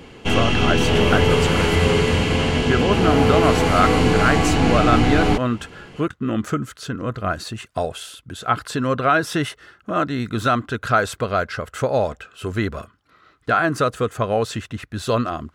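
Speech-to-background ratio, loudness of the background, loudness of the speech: -4.0 dB, -18.5 LUFS, -22.5 LUFS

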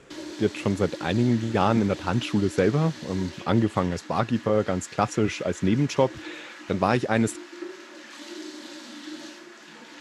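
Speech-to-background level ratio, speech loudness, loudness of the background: 15.5 dB, -25.0 LUFS, -40.5 LUFS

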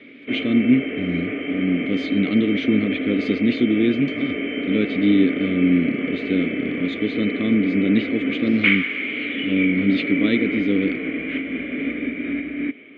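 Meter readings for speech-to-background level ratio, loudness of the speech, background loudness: 3.5 dB, -21.5 LUFS, -25.0 LUFS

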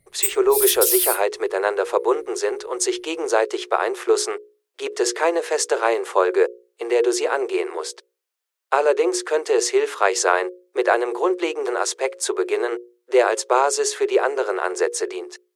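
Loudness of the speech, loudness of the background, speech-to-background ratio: -21.5 LUFS, -20.0 LUFS, -1.5 dB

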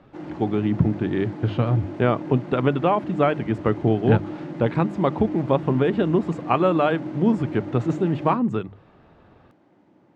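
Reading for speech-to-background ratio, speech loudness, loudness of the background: 11.5 dB, -22.5 LUFS, -34.0 LUFS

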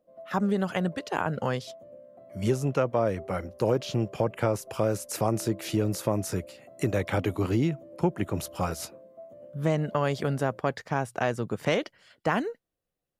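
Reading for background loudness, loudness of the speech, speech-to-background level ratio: -48.0 LUFS, -29.0 LUFS, 19.0 dB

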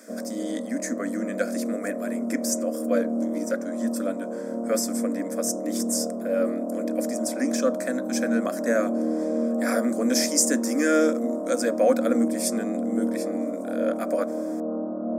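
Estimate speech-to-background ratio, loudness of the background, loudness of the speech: 1.5 dB, -29.0 LUFS, -27.5 LUFS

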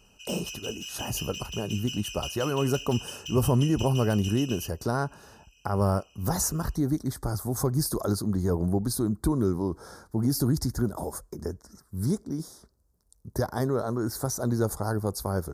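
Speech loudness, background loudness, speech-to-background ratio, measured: -28.5 LUFS, -38.0 LUFS, 9.5 dB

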